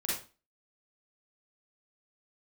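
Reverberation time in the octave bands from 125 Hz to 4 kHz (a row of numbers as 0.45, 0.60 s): 0.35, 0.40, 0.35, 0.35, 0.30, 0.30 s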